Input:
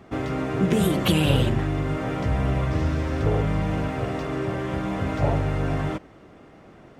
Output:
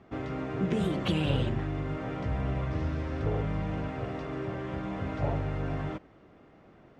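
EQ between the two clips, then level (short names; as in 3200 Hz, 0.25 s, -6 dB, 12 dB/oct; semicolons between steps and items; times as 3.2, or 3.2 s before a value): air absorption 93 m; -7.5 dB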